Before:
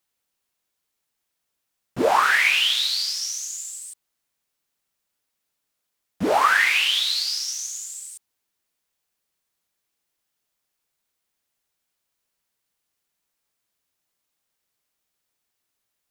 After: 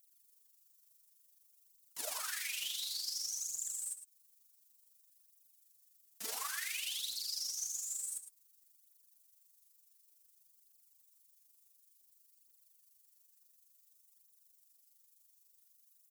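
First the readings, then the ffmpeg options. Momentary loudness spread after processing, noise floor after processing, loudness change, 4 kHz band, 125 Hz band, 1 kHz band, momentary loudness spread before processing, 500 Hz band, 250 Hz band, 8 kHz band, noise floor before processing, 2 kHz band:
8 LU, −70 dBFS, −18.0 dB, −18.0 dB, below −35 dB, −28.5 dB, 18 LU, −29.5 dB, below −35 dB, −8.0 dB, −79 dBFS, −25.0 dB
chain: -filter_complex "[0:a]aderivative,acontrast=85,bass=frequency=250:gain=-7,treble=frequency=4000:gain=8,acompressor=threshold=-32dB:ratio=6,aphaser=in_gain=1:out_gain=1:delay=4.6:decay=0.64:speed=0.56:type=triangular,tremolo=f=24:d=0.571,asplit=2[link_01][link_02];[link_02]aecho=0:1:108:0.282[link_03];[link_01][link_03]amix=inputs=2:normalize=0,volume=-7dB"

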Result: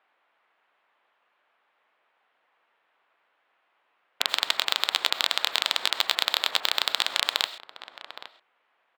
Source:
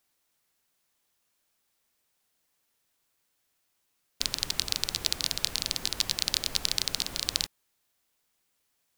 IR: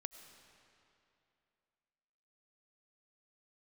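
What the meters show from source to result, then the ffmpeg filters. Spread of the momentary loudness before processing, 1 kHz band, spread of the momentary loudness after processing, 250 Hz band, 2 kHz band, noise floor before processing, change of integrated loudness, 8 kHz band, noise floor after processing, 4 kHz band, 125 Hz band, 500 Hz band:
4 LU, +13.5 dB, 19 LU, −5.0 dB, +11.0 dB, −76 dBFS, +4.5 dB, −4.5 dB, −72 dBFS, +5.0 dB, below −15 dB, +7.5 dB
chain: -filter_complex "[0:a]adynamicsmooth=sensitivity=5:basefreq=1200,aeval=exprs='(tanh(7.08*val(0)+0.75)-tanh(0.75))/7.08':channel_layout=same,highshelf=frequency=4100:width_type=q:width=1.5:gain=-8.5,asplit=2[link_01][link_02];[link_02]adelay=816.3,volume=-23dB,highshelf=frequency=4000:gain=-18.4[link_03];[link_01][link_03]amix=inputs=2:normalize=0,acompressor=threshold=-54dB:ratio=2,highpass=900,bandreject=frequency=6000:width=21[link_04];[1:a]atrim=start_sample=2205,atrim=end_sample=6174[link_05];[link_04][link_05]afir=irnorm=-1:irlink=0,alimiter=level_in=32.5dB:limit=-1dB:release=50:level=0:latency=1,volume=-1dB"

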